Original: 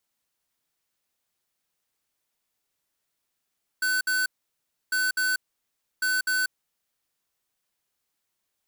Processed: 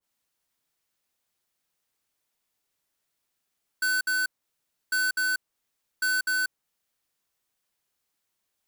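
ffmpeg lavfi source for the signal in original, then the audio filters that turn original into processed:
-f lavfi -i "aevalsrc='0.0596*(2*lt(mod(1510*t,1),0.5)-1)*clip(min(mod(mod(t,1.1),0.25),0.19-mod(mod(t,1.1),0.25))/0.005,0,1)*lt(mod(t,1.1),0.5)':d=3.3:s=44100"
-af "adynamicequalizer=threshold=0.0112:dfrequency=1800:dqfactor=0.7:tfrequency=1800:tqfactor=0.7:attack=5:release=100:ratio=0.375:range=2:mode=cutabove:tftype=highshelf"

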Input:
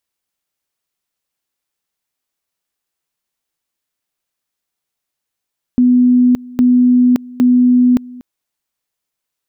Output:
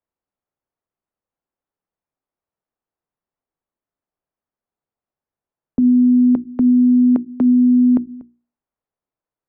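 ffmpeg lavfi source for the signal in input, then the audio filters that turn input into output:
-f lavfi -i "aevalsrc='pow(10,(-6.5-22.5*gte(mod(t,0.81),0.57))/20)*sin(2*PI*248*t)':d=2.43:s=44100"
-filter_complex "[0:a]lowpass=1k,bandreject=f=60:t=h:w=6,bandreject=f=120:t=h:w=6,bandreject=f=180:t=h:w=6,bandreject=f=240:t=h:w=6,bandreject=f=300:t=h:w=6,bandreject=f=360:t=h:w=6,acrossover=split=190|280[a][b][c];[a]acompressor=threshold=-31dB:ratio=6[d];[d][b][c]amix=inputs=3:normalize=0"

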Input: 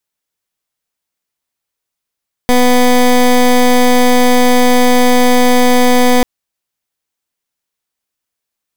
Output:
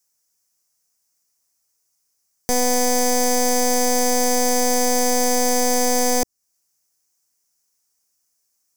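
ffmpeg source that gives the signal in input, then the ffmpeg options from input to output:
-f lavfi -i "aevalsrc='0.398*(2*lt(mod(248*t,1),0.18)-1)':d=3.74:s=44100"
-filter_complex "[0:a]highshelf=f=4.5k:t=q:w=3:g=8.5,acrossover=split=410[a][b];[a]asoftclip=type=tanh:threshold=-20.5dB[c];[b]alimiter=limit=-5.5dB:level=0:latency=1:release=297[d];[c][d]amix=inputs=2:normalize=0"

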